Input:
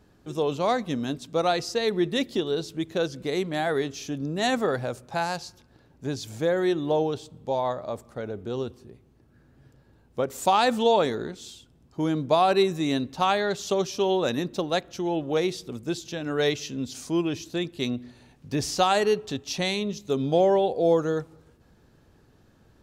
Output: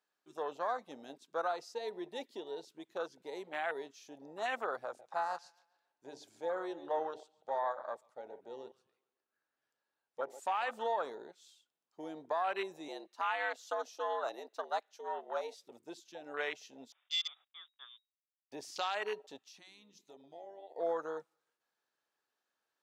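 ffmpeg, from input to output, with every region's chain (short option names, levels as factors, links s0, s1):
-filter_complex "[0:a]asettb=1/sr,asplit=3[s0][s1][s2];[s0]atrim=end=4.854[s3];[s1]atrim=start=4.85:end=10.71,asetpts=PTS-STARTPTS,afade=t=in:d=0.004:c=qsin,afade=t=out:st=5.856:d=0.004:c=qsin,lowpass=11000,bandreject=f=50:t=h:w=6,bandreject=f=100:t=h:w=6,bandreject=f=150:t=h:w=6,bandreject=f=200:t=h:w=6,bandreject=f=250:t=h:w=6,bandreject=f=300:t=h:w=6,bandreject=f=350:t=h:w=6,bandreject=f=400:t=h:w=6,bandreject=f=450:t=h:w=6,asplit=2[s4][s5];[s5]adelay=139,lowpass=f=3300:p=1,volume=0.188,asplit=2[s6][s7];[s7]adelay=139,lowpass=f=3300:p=1,volume=0.49,asplit=2[s8][s9];[s9]adelay=139,lowpass=f=3300:p=1,volume=0.49,asplit=2[s10][s11];[s11]adelay=139,lowpass=f=3300:p=1,volume=0.49,asplit=2[s12][s13];[s13]adelay=139,lowpass=f=3300:p=1,volume=0.49[s14];[s4][s6][s8][s10][s12][s14]amix=inputs=6:normalize=0,atrim=end_sample=258426[s15];[s2]atrim=start=10.706[s16];[s3][s15]acrossfade=d=0.004:c1=hsin:c2=qsin[s17];[s17][s16]acrossfade=d=0.004:c1=qsin:c2=hsin,asettb=1/sr,asplit=3[s18][s19][s20];[s18]atrim=end=12.884[s21];[s19]atrim=start=12.88:end=15.64,asetpts=PTS-STARTPTS,afade=t=in:d=0.004:c=qsin,afade=t=out:st=2.756:d=0.004:c=qsin,lowshelf=f=350:g=-6.5,afreqshift=88[s22];[s20]atrim=start=15.636[s23];[s21][s22]acrossfade=d=0.004:c1=hsin:c2=qsin[s24];[s24][s23]acrossfade=d=0.004:c1=qsin:c2=hsin,asettb=1/sr,asplit=3[s25][s26][s27];[s25]atrim=end=16.924[s28];[s26]atrim=start=16.92:end=18.52,asetpts=PTS-STARTPTS,afade=t=in:d=0.004:c=qsin,afade=t=out:st=1.596:d=0.004:c=qsin,highpass=f=510:p=1,aeval=exprs='sgn(val(0))*max(abs(val(0))-0.00708,0)':c=same,lowpass=f=3200:t=q:w=0.5098,lowpass=f=3200:t=q:w=0.6013,lowpass=f=3200:t=q:w=0.9,lowpass=f=3200:t=q:w=2.563,afreqshift=-3800[s29];[s27]atrim=start=18.516[s30];[s28][s29]acrossfade=d=0.004:c1=hsin:c2=qsin[s31];[s31][s30]acrossfade=d=0.004:c1=qsin:c2=hsin,asettb=1/sr,asplit=3[s32][s33][s34];[s32]atrim=end=19.384[s35];[s33]atrim=start=19.38:end=20.76,asetpts=PTS-STARTPTS,afade=t=in:d=0.004:c=qsin,afade=t=out:st=1.376:d=0.004:c=qsin,equalizer=f=490:w=3.4:g=-8.5,bandreject=f=60:t=h:w=6,bandreject=f=120:t=h:w=6,bandreject=f=180:t=h:w=6,bandreject=f=240:t=h:w=6,bandreject=f=300:t=h:w=6,bandreject=f=360:t=h:w=6,bandreject=f=420:t=h:w=6,acompressor=threshold=0.02:ratio=6:attack=3.2:release=140:knee=1:detection=peak[s36];[s34]atrim=start=20.756[s37];[s35][s36]acrossfade=d=0.004:c1=hsin:c2=qsin[s38];[s38][s37]acrossfade=d=0.004:c1=qsin:c2=hsin,afwtdn=0.0316,highpass=910,alimiter=limit=0.0708:level=0:latency=1:release=119,volume=0.794"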